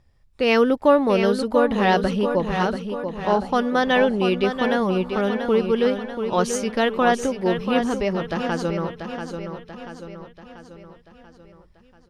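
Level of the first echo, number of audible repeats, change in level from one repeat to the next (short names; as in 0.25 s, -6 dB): -7.5 dB, 5, -6.0 dB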